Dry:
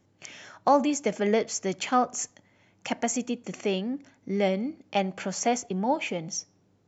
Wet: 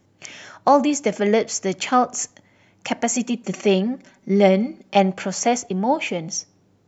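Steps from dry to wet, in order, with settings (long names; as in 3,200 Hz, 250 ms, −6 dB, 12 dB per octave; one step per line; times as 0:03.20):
0:03.11–0:05.14: comb filter 5.2 ms, depth 73%
level +6 dB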